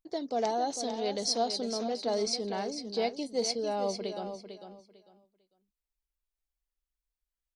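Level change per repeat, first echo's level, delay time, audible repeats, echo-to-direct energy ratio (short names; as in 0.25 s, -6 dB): -13.0 dB, -9.0 dB, 0.449 s, 2, -9.0 dB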